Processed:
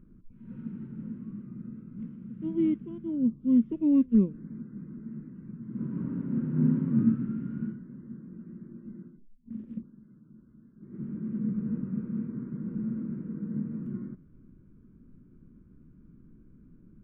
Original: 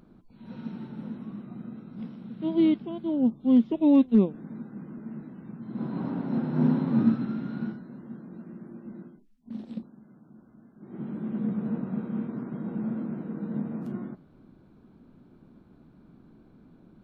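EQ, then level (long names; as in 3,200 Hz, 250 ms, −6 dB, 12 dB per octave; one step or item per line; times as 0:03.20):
spectral tilt −3 dB per octave
phaser with its sweep stopped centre 1,800 Hz, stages 4
−7.0 dB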